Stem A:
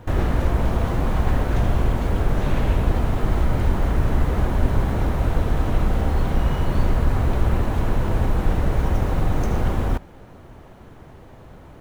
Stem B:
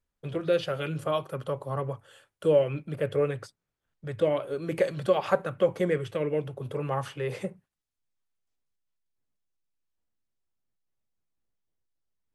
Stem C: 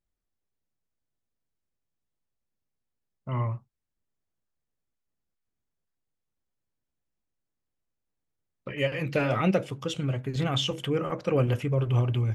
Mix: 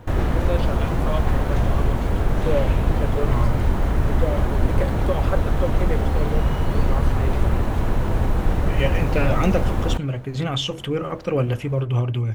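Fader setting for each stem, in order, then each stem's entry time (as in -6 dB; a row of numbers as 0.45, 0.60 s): 0.0, -2.0, +3.0 dB; 0.00, 0.00, 0.00 s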